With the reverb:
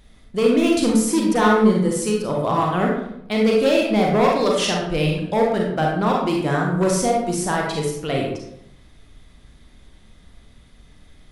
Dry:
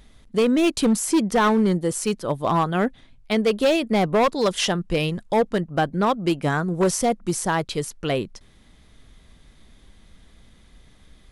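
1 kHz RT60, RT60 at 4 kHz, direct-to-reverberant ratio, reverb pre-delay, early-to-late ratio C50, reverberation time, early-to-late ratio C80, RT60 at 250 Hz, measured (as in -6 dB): 0.75 s, 0.50 s, -2.0 dB, 33 ms, 1.5 dB, 0.80 s, 5.0 dB, 0.85 s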